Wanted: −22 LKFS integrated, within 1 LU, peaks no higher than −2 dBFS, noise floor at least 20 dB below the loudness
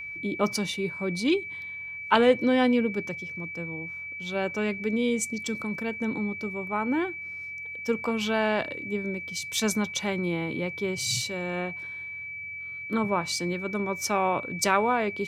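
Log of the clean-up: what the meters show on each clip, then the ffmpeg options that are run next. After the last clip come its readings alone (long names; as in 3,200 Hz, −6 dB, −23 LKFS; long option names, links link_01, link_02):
interfering tone 2,300 Hz; level of the tone −35 dBFS; integrated loudness −28.0 LKFS; sample peak −6.0 dBFS; target loudness −22.0 LKFS
→ -af "bandreject=frequency=2300:width=30"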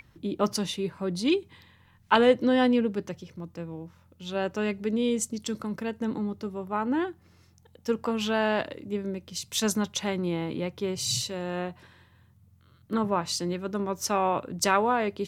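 interfering tone none found; integrated loudness −28.0 LKFS; sample peak −6.0 dBFS; target loudness −22.0 LKFS
→ -af "volume=6dB,alimiter=limit=-2dB:level=0:latency=1"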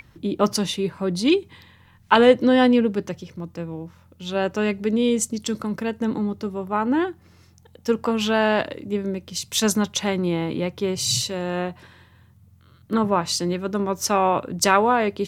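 integrated loudness −22.0 LKFS; sample peak −2.0 dBFS; background noise floor −54 dBFS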